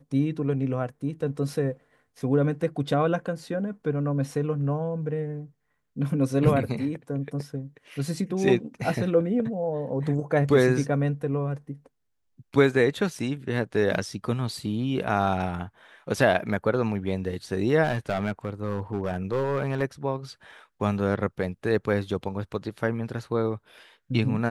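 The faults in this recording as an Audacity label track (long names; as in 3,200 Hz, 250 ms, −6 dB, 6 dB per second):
17.830000	19.830000	clipping −21 dBFS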